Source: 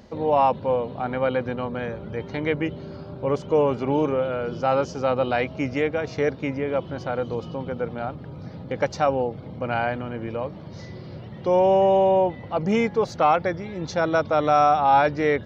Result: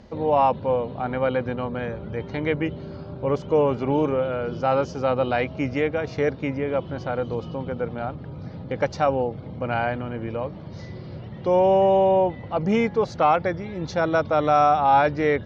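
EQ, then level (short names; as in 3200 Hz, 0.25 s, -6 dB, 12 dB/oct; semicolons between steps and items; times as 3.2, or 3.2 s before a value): Bessel low-pass 5800 Hz, order 2; low shelf 76 Hz +6.5 dB; 0.0 dB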